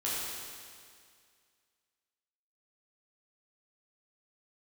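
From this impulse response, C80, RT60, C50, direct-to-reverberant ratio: −0.5 dB, 2.1 s, −2.5 dB, −8.0 dB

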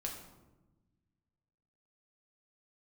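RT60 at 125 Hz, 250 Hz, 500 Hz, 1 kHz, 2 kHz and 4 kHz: 2.2, 1.9, 1.2, 0.95, 0.75, 0.60 seconds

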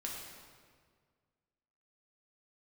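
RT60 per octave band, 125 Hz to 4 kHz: 2.2, 2.0, 1.9, 1.7, 1.5, 1.3 seconds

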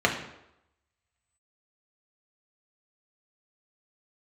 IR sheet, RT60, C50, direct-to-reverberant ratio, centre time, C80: 0.85 s, 7.5 dB, 0.0 dB, 23 ms, 10.5 dB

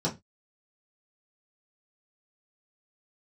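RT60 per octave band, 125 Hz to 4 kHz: 0.30, 0.25, 0.20, 0.20, 0.20, 0.20 seconds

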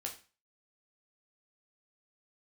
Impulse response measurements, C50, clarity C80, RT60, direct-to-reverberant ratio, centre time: 10.5 dB, 16.0 dB, 0.35 s, 0.0 dB, 16 ms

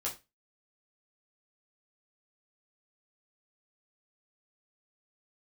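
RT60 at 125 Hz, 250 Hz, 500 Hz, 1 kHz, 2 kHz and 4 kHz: 0.30, 0.25, 0.25, 0.25, 0.25, 0.25 seconds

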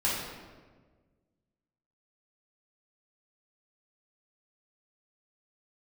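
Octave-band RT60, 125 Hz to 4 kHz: 2.0, 1.8, 1.6, 1.3, 1.2, 0.90 seconds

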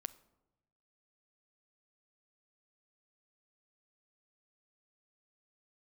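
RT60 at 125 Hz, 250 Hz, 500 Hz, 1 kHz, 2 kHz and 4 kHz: 1.4, 1.1, 1.0, 0.95, 0.65, 0.50 seconds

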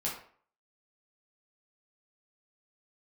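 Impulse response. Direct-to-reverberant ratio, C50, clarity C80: −5.5 dB, 5.0 dB, 9.0 dB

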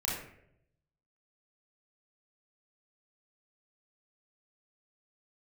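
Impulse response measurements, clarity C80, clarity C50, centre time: 5.5 dB, 1.0 dB, 56 ms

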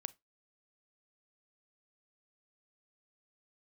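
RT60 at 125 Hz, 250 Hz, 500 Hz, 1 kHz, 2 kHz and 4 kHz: 0.20, 0.20, 0.20, 0.20, 0.15, 0.15 seconds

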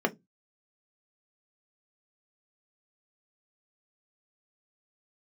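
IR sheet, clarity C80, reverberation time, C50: 32.0 dB, 0.15 s, 22.0 dB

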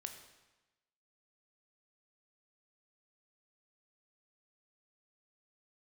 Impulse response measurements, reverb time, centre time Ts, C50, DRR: 1.1 s, 22 ms, 8.0 dB, 5.5 dB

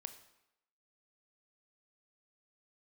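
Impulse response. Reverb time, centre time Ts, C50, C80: 0.85 s, 9 ms, 11.5 dB, 14.0 dB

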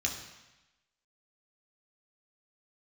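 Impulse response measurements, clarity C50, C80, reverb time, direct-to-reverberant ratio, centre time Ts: 6.5 dB, 8.5 dB, 1.0 s, 0.0 dB, 31 ms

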